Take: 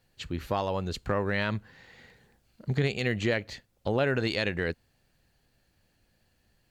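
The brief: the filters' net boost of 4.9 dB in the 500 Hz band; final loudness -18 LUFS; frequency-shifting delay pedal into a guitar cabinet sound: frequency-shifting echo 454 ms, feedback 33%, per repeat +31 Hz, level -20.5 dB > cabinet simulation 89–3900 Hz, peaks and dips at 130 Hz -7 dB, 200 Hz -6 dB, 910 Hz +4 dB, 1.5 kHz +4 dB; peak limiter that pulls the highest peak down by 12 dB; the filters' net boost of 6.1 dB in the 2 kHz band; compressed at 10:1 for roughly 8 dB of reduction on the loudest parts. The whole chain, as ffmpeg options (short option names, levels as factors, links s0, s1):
-filter_complex "[0:a]equalizer=f=500:t=o:g=5.5,equalizer=f=2000:t=o:g=5,acompressor=threshold=0.0447:ratio=10,alimiter=level_in=1.68:limit=0.0631:level=0:latency=1,volume=0.596,asplit=4[s0][s1][s2][s3];[s1]adelay=454,afreqshift=31,volume=0.0944[s4];[s2]adelay=908,afreqshift=62,volume=0.0313[s5];[s3]adelay=1362,afreqshift=93,volume=0.0102[s6];[s0][s4][s5][s6]amix=inputs=4:normalize=0,highpass=89,equalizer=f=130:t=q:w=4:g=-7,equalizer=f=200:t=q:w=4:g=-6,equalizer=f=910:t=q:w=4:g=4,equalizer=f=1500:t=q:w=4:g=4,lowpass=f=3900:w=0.5412,lowpass=f=3900:w=1.3066,volume=12.6"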